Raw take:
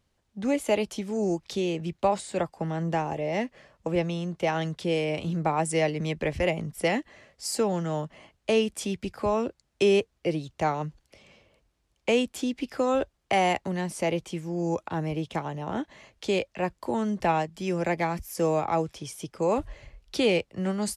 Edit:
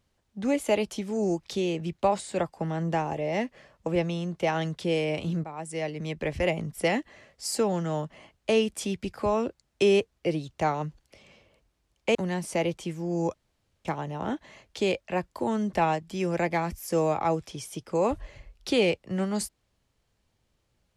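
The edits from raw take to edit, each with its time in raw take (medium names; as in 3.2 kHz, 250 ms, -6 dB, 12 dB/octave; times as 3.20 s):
5.44–6.52 s: fade in, from -16 dB
12.15–13.62 s: delete
14.81–15.32 s: room tone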